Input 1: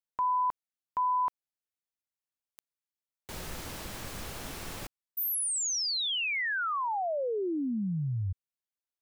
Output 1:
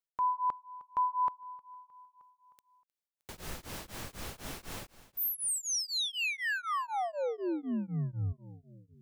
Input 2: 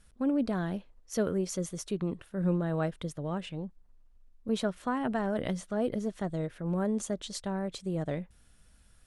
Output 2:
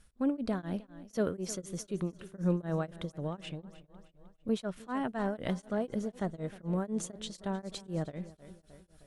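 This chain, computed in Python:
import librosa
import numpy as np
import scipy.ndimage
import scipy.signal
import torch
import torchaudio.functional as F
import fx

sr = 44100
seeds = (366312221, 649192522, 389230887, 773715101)

p1 = x + fx.echo_feedback(x, sr, ms=310, feedback_pct=55, wet_db=-17.5, dry=0)
y = p1 * np.abs(np.cos(np.pi * 4.0 * np.arange(len(p1)) / sr))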